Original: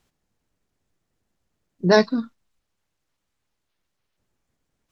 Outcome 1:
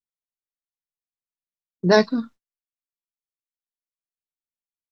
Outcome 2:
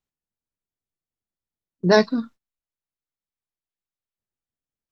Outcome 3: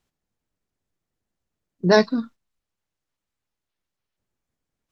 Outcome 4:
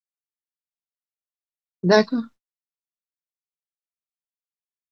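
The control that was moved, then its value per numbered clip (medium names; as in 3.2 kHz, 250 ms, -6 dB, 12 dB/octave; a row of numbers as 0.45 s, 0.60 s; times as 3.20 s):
gate, range: -38 dB, -20 dB, -7 dB, -55 dB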